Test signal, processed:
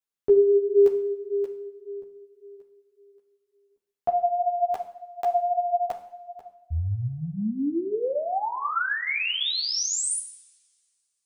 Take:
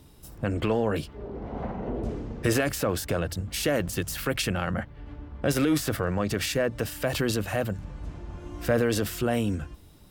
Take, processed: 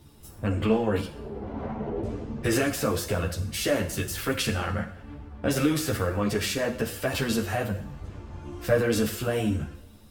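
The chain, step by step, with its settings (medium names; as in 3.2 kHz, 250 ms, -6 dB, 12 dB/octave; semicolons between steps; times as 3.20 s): two-slope reverb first 0.69 s, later 2.3 s, from -24 dB, DRR 6 dB; three-phase chorus; trim +2.5 dB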